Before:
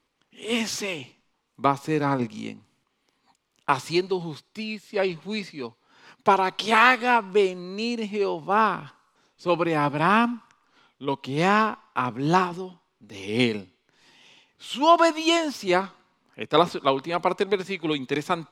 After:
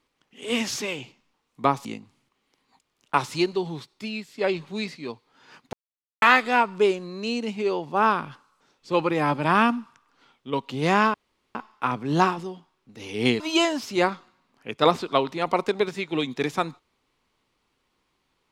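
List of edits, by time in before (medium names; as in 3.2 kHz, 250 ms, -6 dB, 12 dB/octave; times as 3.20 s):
1.85–2.40 s: delete
6.28–6.77 s: mute
11.69 s: insert room tone 0.41 s
13.54–15.12 s: delete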